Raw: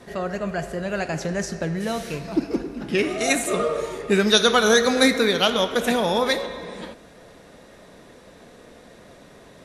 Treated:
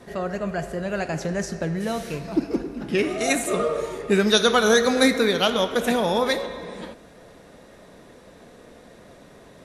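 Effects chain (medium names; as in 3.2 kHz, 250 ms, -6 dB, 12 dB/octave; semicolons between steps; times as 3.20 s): peaking EQ 3.9 kHz -2.5 dB 2.9 oct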